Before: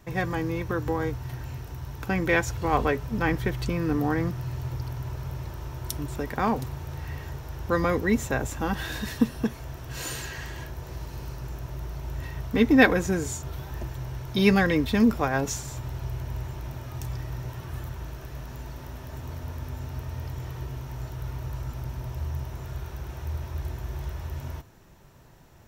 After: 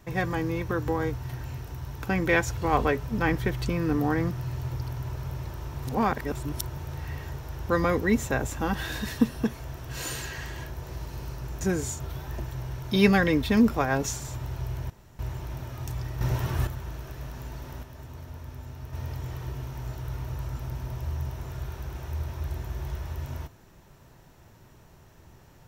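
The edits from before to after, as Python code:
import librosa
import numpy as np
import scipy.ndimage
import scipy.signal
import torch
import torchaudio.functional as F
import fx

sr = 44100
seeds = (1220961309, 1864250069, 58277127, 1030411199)

y = fx.edit(x, sr, fx.reverse_span(start_s=5.74, length_s=1.03),
    fx.cut(start_s=11.61, length_s=1.43),
    fx.insert_room_tone(at_s=16.33, length_s=0.29),
    fx.clip_gain(start_s=17.35, length_s=0.46, db=8.5),
    fx.clip_gain(start_s=18.97, length_s=1.1, db=-5.5), tone=tone)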